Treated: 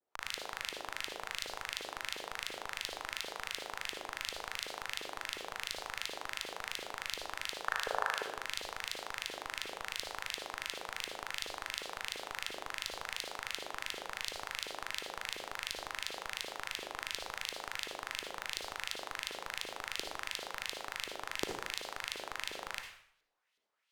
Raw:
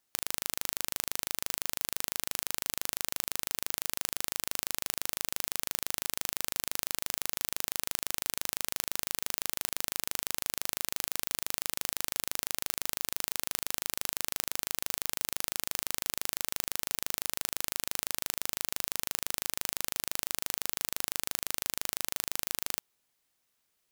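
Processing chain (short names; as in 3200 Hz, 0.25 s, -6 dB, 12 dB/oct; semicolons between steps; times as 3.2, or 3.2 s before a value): block floating point 5-bit; LFO band-pass saw up 2.8 Hz 380–4000 Hz; spectral gain 7.67–8.24, 390–1800 Hz +11 dB; vibrato 0.93 Hz 54 cents; in parallel at -8.5 dB: Schmitt trigger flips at -32.5 dBFS; on the sum: reverb RT60 0.65 s, pre-delay 48 ms, DRR 4 dB; gain +5.5 dB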